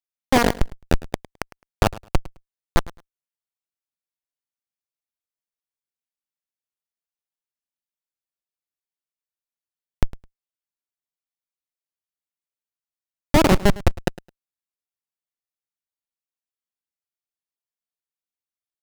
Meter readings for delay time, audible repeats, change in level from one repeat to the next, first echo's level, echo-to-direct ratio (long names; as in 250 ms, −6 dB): 106 ms, 2, −14.5 dB, −19.0 dB, −19.0 dB